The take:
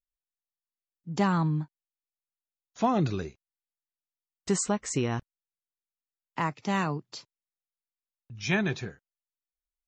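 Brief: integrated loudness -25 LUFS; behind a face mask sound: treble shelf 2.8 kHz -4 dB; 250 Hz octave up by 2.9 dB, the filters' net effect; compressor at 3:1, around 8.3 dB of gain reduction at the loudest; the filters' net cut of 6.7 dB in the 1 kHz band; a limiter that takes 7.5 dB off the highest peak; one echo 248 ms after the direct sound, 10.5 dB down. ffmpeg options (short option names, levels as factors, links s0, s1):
-af "equalizer=f=250:t=o:g=4.5,equalizer=f=1000:t=o:g=-8.5,acompressor=threshold=0.0282:ratio=3,alimiter=level_in=1.19:limit=0.0631:level=0:latency=1,volume=0.841,highshelf=f=2800:g=-4,aecho=1:1:248:0.299,volume=3.98"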